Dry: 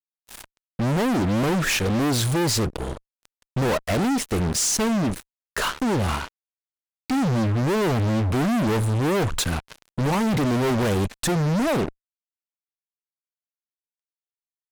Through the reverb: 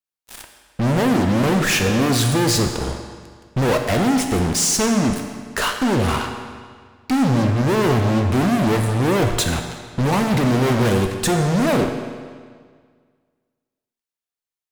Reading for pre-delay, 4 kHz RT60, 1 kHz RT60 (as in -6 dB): 8 ms, 1.6 s, 1.8 s